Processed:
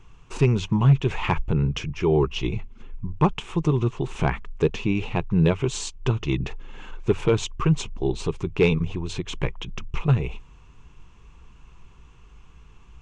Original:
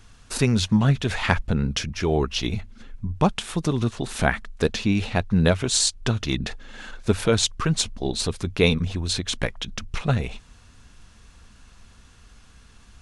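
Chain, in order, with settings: rippled EQ curve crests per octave 0.71, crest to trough 10 dB; hard clipper -9.5 dBFS, distortion -21 dB; tape spacing loss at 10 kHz 21 dB

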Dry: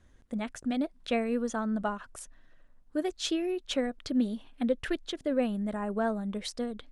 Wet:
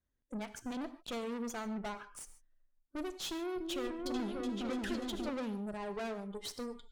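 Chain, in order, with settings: spectral noise reduction 21 dB; valve stage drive 38 dB, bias 0.75; 3.26–5.30 s: delay with an opening low-pass 293 ms, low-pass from 400 Hz, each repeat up 2 oct, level 0 dB; gated-style reverb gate 170 ms flat, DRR 11.5 dB; trim +1 dB

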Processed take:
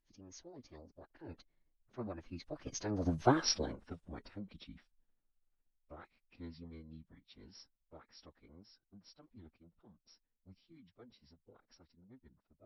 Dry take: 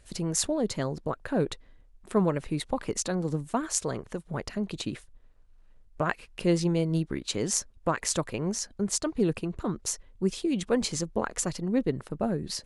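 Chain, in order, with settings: Doppler pass-by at 3.30 s, 27 m/s, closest 3.6 m; formant-preserving pitch shift -11 st; trim +2.5 dB

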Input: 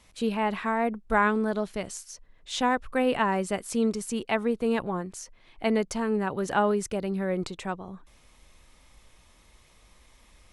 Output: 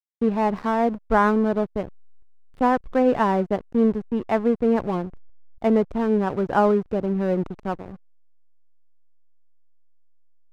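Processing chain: low-pass 1.2 kHz 12 dB/octave; hysteresis with a dead band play -35.5 dBFS; trim +6.5 dB

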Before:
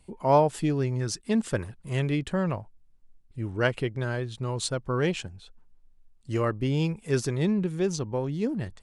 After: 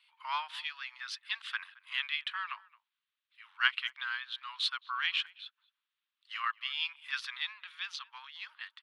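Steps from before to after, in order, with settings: steep high-pass 1.1 kHz 48 dB/octave; resonant high shelf 5.1 kHz -14 dB, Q 3; speakerphone echo 220 ms, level -23 dB

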